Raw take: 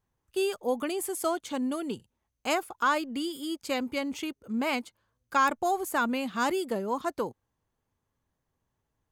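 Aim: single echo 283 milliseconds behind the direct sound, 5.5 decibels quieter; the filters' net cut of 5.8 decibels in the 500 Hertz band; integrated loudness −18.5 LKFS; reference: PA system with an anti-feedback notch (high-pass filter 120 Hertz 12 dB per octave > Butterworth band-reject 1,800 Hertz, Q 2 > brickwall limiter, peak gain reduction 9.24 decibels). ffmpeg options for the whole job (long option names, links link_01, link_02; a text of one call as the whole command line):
ffmpeg -i in.wav -af "highpass=120,asuperstop=centerf=1800:order=8:qfactor=2,equalizer=frequency=500:width_type=o:gain=-8,aecho=1:1:283:0.531,volume=16.5dB,alimiter=limit=-8.5dB:level=0:latency=1" out.wav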